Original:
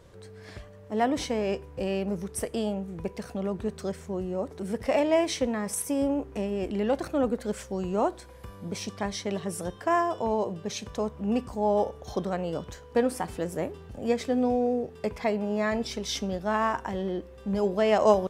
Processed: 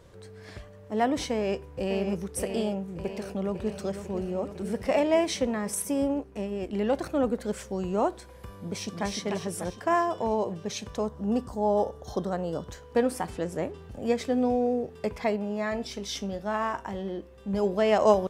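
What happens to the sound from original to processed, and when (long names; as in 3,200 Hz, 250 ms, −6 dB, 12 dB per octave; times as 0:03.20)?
0:01.31–0:02.04: delay throw 590 ms, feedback 60%, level −7 dB
0:02.70–0:03.69: delay throw 500 ms, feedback 75%, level −10 dB
0:06.01–0:06.73: expander for the loud parts, over −37 dBFS
0:08.57–0:09.04: delay throw 300 ms, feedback 55%, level −3.5 dB
0:11.06–0:12.71: parametric band 2,400 Hz −12 dB 0.48 octaves
0:13.30–0:13.78: low-pass filter 8,900 Hz
0:15.36–0:17.54: tuned comb filter 50 Hz, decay 0.19 s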